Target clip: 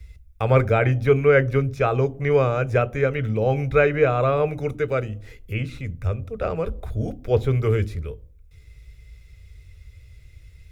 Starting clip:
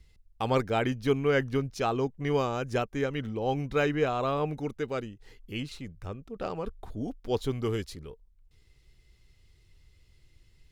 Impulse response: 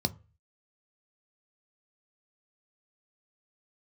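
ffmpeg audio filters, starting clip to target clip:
-filter_complex "[0:a]acrossover=split=2600[s0][s1];[s1]acompressor=threshold=0.00178:ratio=4:attack=1:release=60[s2];[s0][s2]amix=inputs=2:normalize=0,highshelf=f=7700:g=7.5,asplit=2[s3][s4];[1:a]atrim=start_sample=2205,asetrate=25137,aresample=44100[s5];[s4][s5]afir=irnorm=-1:irlink=0,volume=0.299[s6];[s3][s6]amix=inputs=2:normalize=0,volume=1.88"

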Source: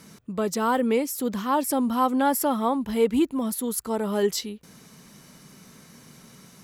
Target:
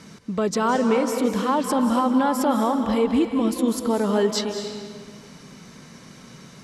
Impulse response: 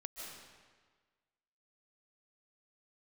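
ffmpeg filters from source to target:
-filter_complex "[0:a]lowpass=6400,alimiter=limit=0.119:level=0:latency=1:release=119,asplit=2[s0][s1];[1:a]atrim=start_sample=2205,asetrate=35721,aresample=44100[s2];[s1][s2]afir=irnorm=-1:irlink=0,volume=1.33[s3];[s0][s3]amix=inputs=2:normalize=0"

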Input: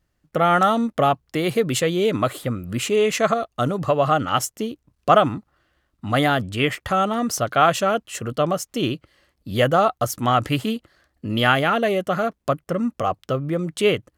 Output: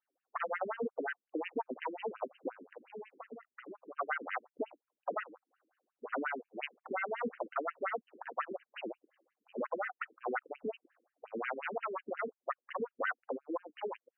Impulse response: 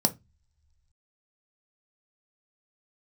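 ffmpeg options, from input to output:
-filter_complex "[0:a]acompressor=threshold=0.0316:ratio=6,highpass=170,equalizer=f=230:t=q:w=4:g=7,equalizer=f=510:t=q:w=4:g=7,equalizer=f=760:t=q:w=4:g=9,equalizer=f=1900:t=q:w=4:g=-7,lowpass=f=8300:w=0.5412,lowpass=f=8300:w=1.3066,aeval=exprs='0.266*(cos(1*acos(clip(val(0)/0.266,-1,1)))-cos(1*PI/2))+0.133*(cos(6*acos(clip(val(0)/0.266,-1,1)))-cos(6*PI/2))':c=same,asettb=1/sr,asplit=3[s0][s1][s2];[s0]atrim=end=2.604[s3];[s1]atrim=start=2.6:end=3.97,asetpts=PTS-STARTPTS,afade=t=in:d=0.004:c=qsin,afade=t=out:st=1.366:d=0.004:c=qsin,acrossover=split=320[s4][s5];[s5]acompressor=threshold=0.0141:ratio=6[s6];[s4][s6]amix=inputs=2:normalize=0[s7];[s2]atrim=start=3.966[s8];[s3][s7]acrossfade=d=0.004:c1=hsin:c2=qsin[s9];[s9][s8]acrossfade=d=0.004:c1=qsin:c2=hsin,afftfilt=real='re*between(b*sr/1024,300*pow(2200/300,0.5+0.5*sin(2*PI*5.6*pts/sr))/1.41,300*pow(2200/300,0.5+0.5*sin(2*PI*5.6*pts/sr))*1.41)':imag='im*between(b*sr/1024,300*pow(2200/300,0.5+0.5*sin(2*PI*5.6*pts/sr))/1.41,300*pow(2200/300,0.5+0.5*sin(2*PI*5.6*pts/sr))*1.41)':win_size=1024:overlap=0.75,volume=0.422"

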